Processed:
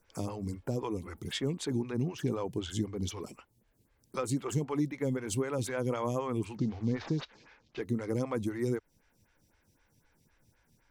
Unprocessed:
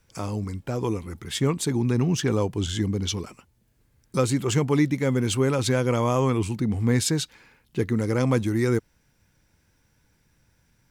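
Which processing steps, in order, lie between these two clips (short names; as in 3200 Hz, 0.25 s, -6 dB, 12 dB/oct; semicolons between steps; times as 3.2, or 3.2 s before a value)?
6.55–7.8 CVSD 32 kbps; compressor 3:1, threshold -28 dBFS, peak gain reduction 9.5 dB; photocell phaser 3.9 Hz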